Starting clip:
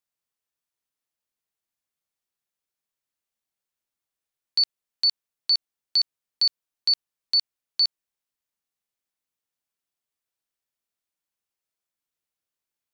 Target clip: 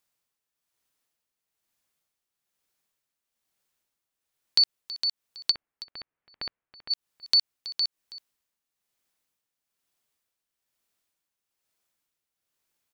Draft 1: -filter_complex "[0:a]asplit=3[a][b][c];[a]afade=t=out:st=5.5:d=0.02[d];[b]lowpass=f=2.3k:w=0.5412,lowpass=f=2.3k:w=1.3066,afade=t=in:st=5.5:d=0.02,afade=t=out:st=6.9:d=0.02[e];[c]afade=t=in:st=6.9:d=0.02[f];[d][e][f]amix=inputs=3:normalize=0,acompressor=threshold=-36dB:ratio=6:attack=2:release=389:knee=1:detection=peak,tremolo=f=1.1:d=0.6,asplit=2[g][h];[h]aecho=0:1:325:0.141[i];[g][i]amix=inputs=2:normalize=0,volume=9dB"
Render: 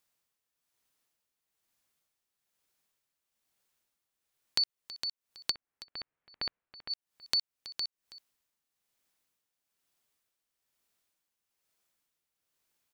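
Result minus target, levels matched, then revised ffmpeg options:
compressor: peak gain reduction +9 dB
-filter_complex "[0:a]asplit=3[a][b][c];[a]afade=t=out:st=5.5:d=0.02[d];[b]lowpass=f=2.3k:w=0.5412,lowpass=f=2.3k:w=1.3066,afade=t=in:st=5.5:d=0.02,afade=t=out:st=6.9:d=0.02[e];[c]afade=t=in:st=6.9:d=0.02[f];[d][e][f]amix=inputs=3:normalize=0,acompressor=threshold=-25.5dB:ratio=6:attack=2:release=389:knee=1:detection=peak,tremolo=f=1.1:d=0.6,asplit=2[g][h];[h]aecho=0:1:325:0.141[i];[g][i]amix=inputs=2:normalize=0,volume=9dB"

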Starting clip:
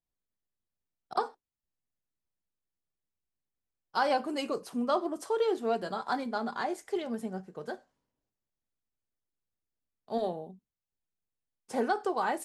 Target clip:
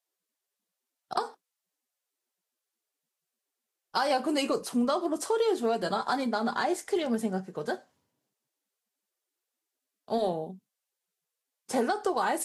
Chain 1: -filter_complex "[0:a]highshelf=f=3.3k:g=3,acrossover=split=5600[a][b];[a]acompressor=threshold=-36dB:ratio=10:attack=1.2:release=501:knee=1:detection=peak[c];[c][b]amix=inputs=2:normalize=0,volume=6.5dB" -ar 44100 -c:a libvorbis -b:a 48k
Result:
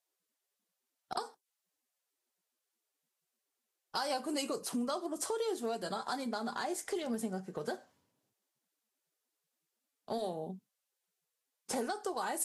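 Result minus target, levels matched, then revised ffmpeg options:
compressor: peak gain reduction +9 dB
-filter_complex "[0:a]highshelf=f=3.3k:g=3,acrossover=split=5600[a][b];[a]acompressor=threshold=-26dB:ratio=10:attack=1.2:release=501:knee=1:detection=peak[c];[c][b]amix=inputs=2:normalize=0,volume=6.5dB" -ar 44100 -c:a libvorbis -b:a 48k

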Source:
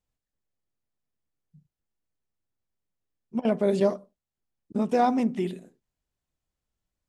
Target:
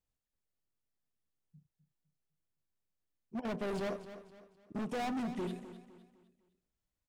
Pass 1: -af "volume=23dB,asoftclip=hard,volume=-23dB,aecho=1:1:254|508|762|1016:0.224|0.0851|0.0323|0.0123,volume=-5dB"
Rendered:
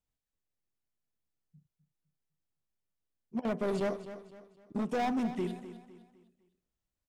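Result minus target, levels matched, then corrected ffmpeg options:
overloaded stage: distortion -4 dB
-af "volume=29.5dB,asoftclip=hard,volume=-29.5dB,aecho=1:1:254|508|762|1016:0.224|0.0851|0.0323|0.0123,volume=-5dB"

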